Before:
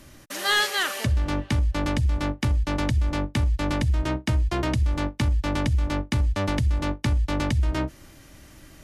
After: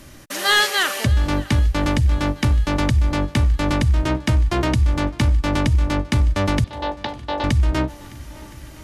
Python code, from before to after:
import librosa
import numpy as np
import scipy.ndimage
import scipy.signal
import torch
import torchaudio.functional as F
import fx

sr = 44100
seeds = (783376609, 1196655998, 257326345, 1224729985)

y = fx.cabinet(x, sr, low_hz=490.0, low_slope=12, high_hz=4100.0, hz=(510.0, 830.0, 1300.0, 2300.0, 3800.0), db=(5, 7, -7, -9, 4), at=(6.64, 7.44))
y = fx.echo_swing(y, sr, ms=1017, ratio=1.5, feedback_pct=50, wet_db=-22)
y = y * 10.0 ** (5.5 / 20.0)